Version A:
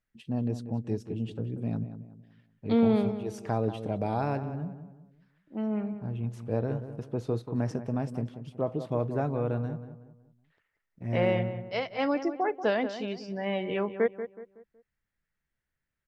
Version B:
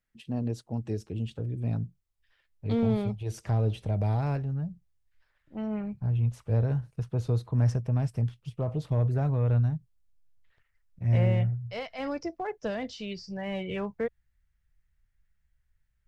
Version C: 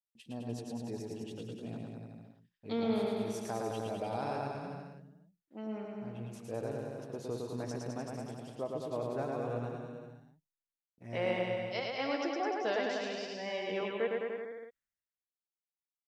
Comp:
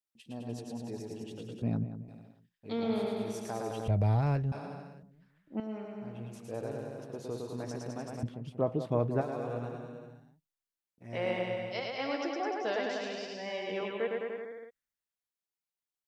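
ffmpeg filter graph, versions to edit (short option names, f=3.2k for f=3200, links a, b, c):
-filter_complex "[0:a]asplit=3[a][b][c];[2:a]asplit=5[d][e][f][g][h];[d]atrim=end=1.622[i];[a]atrim=start=1.618:end=2.082[j];[e]atrim=start=2.078:end=3.882[k];[1:a]atrim=start=3.878:end=4.522[l];[f]atrim=start=4.518:end=5.032[m];[b]atrim=start=5.028:end=5.602[n];[g]atrim=start=5.598:end=8.232[o];[c]atrim=start=8.228:end=9.212[p];[h]atrim=start=9.208[q];[i][j]acrossfade=d=0.004:c1=hsin:c2=hsin[r];[r][k]acrossfade=d=0.004:c1=hsin:c2=hsin[s];[s][l]acrossfade=d=0.004:c1=hsin:c2=hsin[t];[t][m]acrossfade=d=0.004:c1=hsin:c2=hsin[u];[u][n]acrossfade=d=0.004:c1=hsin:c2=hsin[v];[v][o]acrossfade=d=0.004:c1=hsin:c2=hsin[w];[w][p]acrossfade=d=0.004:c1=hsin:c2=hsin[x];[x][q]acrossfade=d=0.004:c1=hsin:c2=hsin"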